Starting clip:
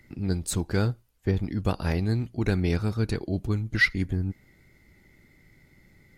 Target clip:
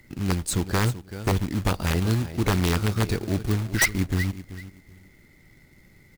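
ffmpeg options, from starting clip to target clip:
ffmpeg -i in.wav -af "aecho=1:1:383|766:0.188|0.0396,acrusher=bits=3:mode=log:mix=0:aa=0.000001,aeval=exprs='(mod(6.31*val(0)+1,2)-1)/6.31':channel_layout=same,volume=2.5dB" out.wav

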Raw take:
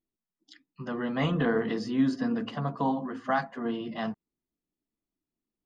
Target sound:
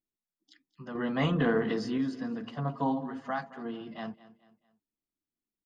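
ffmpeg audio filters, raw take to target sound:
ffmpeg -i in.wav -filter_complex "[0:a]asettb=1/sr,asplit=3[link_01][link_02][link_03];[link_01]atrim=end=0.954[link_04];[link_02]atrim=start=0.95:end=1.98,asetpts=PTS-STARTPTS,afade=type=in:duration=0.004:curve=qsin,afade=type=out:start_time=1.026:duration=0.004:curve=qsin,acontrast=61[link_05];[link_03]atrim=start=1.976[link_06];[link_04][link_05]acrossfade=duration=0.004:curve1=hsin:curve2=qsin[link_07];[link_07][link_06]acrossfade=duration=0.004:curve1=qsin:curve2=hsin,asettb=1/sr,asplit=3[link_08][link_09][link_10];[link_08]atrim=end=2.574[link_11];[link_09]atrim=start=2.57:end=3.29,asetpts=PTS-STARTPTS,afade=type=in:duration=0.004:curve=qsin,afade=type=out:start_time=0.716:duration=0.004:curve=qsin,aecho=1:1:7.3:0.96,atrim=end_sample=31752[link_12];[link_10]atrim=start=3.286[link_13];[link_11][link_12]acrossfade=duration=0.004:curve1=hsin:curve2=qsin[link_14];[link_14][link_13]acrossfade=duration=0.004:curve1=qsin:curve2=hsin,aecho=1:1:219|438|657:0.126|0.0504|0.0201,volume=-6.5dB" out.wav

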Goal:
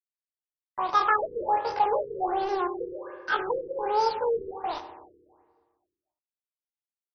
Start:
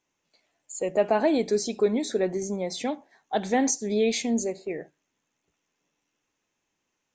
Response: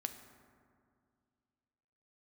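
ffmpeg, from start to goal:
-filter_complex "[0:a]asetrate=88200,aresample=44100,atempo=0.5,acontrast=26,aresample=16000,acrusher=bits=4:mix=0:aa=0.5,aresample=44100[link_01];[1:a]atrim=start_sample=2205,asetrate=61740,aresample=44100[link_02];[link_01][link_02]afir=irnorm=-1:irlink=0,afftfilt=real='re*lt(b*sr/1024,480*pow(6300/480,0.5+0.5*sin(2*PI*1.3*pts/sr)))':imag='im*lt(b*sr/1024,480*pow(6300/480,0.5+0.5*sin(2*PI*1.3*pts/sr)))':win_size=1024:overlap=0.75"

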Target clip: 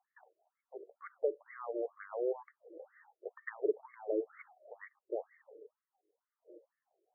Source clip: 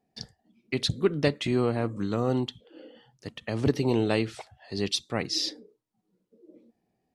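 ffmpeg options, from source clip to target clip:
ffmpeg -i in.wav -filter_complex "[0:a]acrossover=split=360[link_01][link_02];[link_02]acompressor=threshold=-38dB:ratio=5[link_03];[link_01][link_03]amix=inputs=2:normalize=0,afftfilt=real='re*between(b*sr/1024,450*pow(1600/450,0.5+0.5*sin(2*PI*2.1*pts/sr))/1.41,450*pow(1600/450,0.5+0.5*sin(2*PI*2.1*pts/sr))*1.41)':imag='im*between(b*sr/1024,450*pow(1600/450,0.5+0.5*sin(2*PI*2.1*pts/sr))/1.41,450*pow(1600/450,0.5+0.5*sin(2*PI*2.1*pts/sr))*1.41)':win_size=1024:overlap=0.75,volume=2.5dB" out.wav

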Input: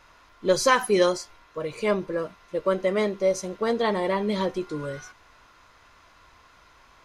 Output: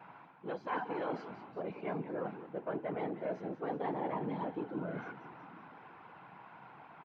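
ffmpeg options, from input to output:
ffmpeg -i in.wav -filter_complex "[0:a]acrossover=split=790|1200[link_01][link_02][link_03];[link_01]asoftclip=type=hard:threshold=-24.5dB[link_04];[link_04][link_02][link_03]amix=inputs=3:normalize=0,lowshelf=frequency=270:gain=8.5,areverse,acompressor=threshold=-36dB:ratio=6,areverse,asplit=8[link_05][link_06][link_07][link_08][link_09][link_10][link_11][link_12];[link_06]adelay=185,afreqshift=-110,volume=-11dB[link_13];[link_07]adelay=370,afreqshift=-220,volume=-15.3dB[link_14];[link_08]adelay=555,afreqshift=-330,volume=-19.6dB[link_15];[link_09]adelay=740,afreqshift=-440,volume=-23.9dB[link_16];[link_10]adelay=925,afreqshift=-550,volume=-28.2dB[link_17];[link_11]adelay=1110,afreqshift=-660,volume=-32.5dB[link_18];[link_12]adelay=1295,afreqshift=-770,volume=-36.8dB[link_19];[link_05][link_13][link_14][link_15][link_16][link_17][link_18][link_19]amix=inputs=8:normalize=0,afftfilt=real='hypot(re,im)*cos(2*PI*random(0))':imag='hypot(re,im)*sin(2*PI*random(1))':win_size=512:overlap=0.75,highpass=frequency=170:width=0.5412,highpass=frequency=170:width=1.3066,equalizer=frequency=230:width_type=q:width=4:gain=-5,equalizer=frequency=390:width_type=q:width=4:gain=-4,equalizer=frequency=560:width_type=q:width=4:gain=-6,equalizer=frequency=800:width_type=q:width=4:gain=7,equalizer=frequency=1200:width_type=q:width=4:gain=-6,equalizer=frequency=1900:width_type=q:width=4:gain=-7,lowpass=frequency=2300:width=0.5412,lowpass=frequency=2300:width=1.3066,volume=8.5dB" out.wav

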